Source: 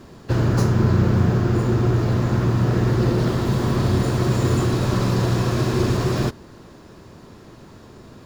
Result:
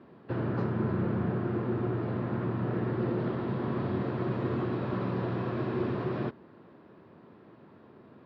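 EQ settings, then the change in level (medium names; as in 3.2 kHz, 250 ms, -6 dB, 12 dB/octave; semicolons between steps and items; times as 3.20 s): band-pass 170–4600 Hz; distance through air 410 m; -7.5 dB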